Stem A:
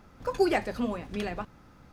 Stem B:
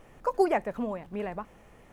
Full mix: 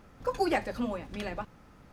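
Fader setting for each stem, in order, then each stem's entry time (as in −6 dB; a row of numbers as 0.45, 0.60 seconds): −2.0, −8.0 decibels; 0.00, 0.00 seconds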